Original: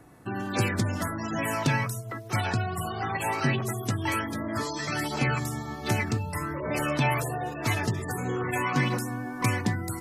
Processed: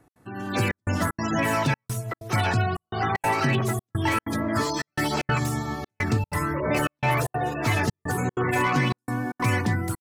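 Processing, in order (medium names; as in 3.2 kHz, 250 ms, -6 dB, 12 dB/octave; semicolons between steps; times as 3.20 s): peak limiter -18.5 dBFS, peak gain reduction 6.5 dB; level rider gain up to 13 dB; speakerphone echo 310 ms, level -30 dB; trance gate "x.xxxxxxx..xx" 190 bpm -60 dB; slew-rate limiter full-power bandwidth 360 Hz; trim -7 dB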